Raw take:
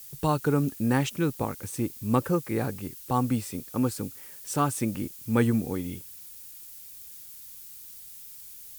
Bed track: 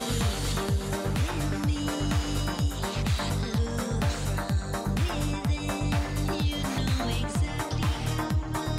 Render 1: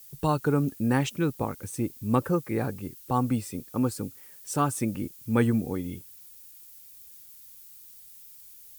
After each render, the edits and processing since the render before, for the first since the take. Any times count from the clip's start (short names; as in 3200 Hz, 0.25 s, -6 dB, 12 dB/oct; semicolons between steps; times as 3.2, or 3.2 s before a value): denoiser 6 dB, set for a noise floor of -46 dBFS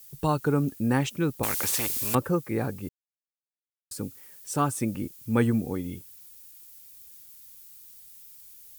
1.43–2.15 spectral compressor 4:1; 2.89–3.91 mute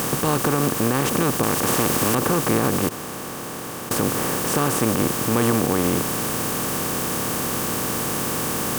per-bin compression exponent 0.2; limiter -9 dBFS, peak gain reduction 7 dB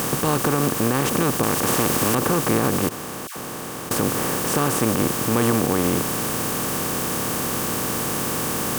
3.27–3.88 dispersion lows, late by 92 ms, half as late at 1100 Hz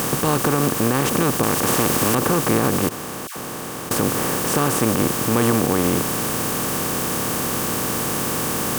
gain +1.5 dB